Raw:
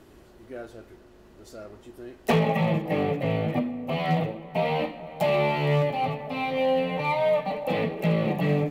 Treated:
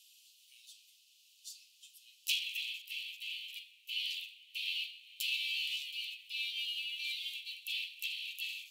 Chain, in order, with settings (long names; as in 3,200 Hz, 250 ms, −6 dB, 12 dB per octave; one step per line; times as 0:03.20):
Butterworth high-pass 2,700 Hz 72 dB per octave
level +4.5 dB